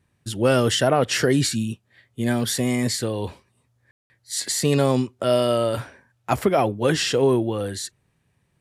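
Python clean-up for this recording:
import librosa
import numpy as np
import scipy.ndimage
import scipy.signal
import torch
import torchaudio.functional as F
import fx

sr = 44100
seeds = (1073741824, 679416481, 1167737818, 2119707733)

y = fx.fix_ambience(x, sr, seeds[0], print_start_s=8.06, print_end_s=8.56, start_s=3.91, end_s=4.1)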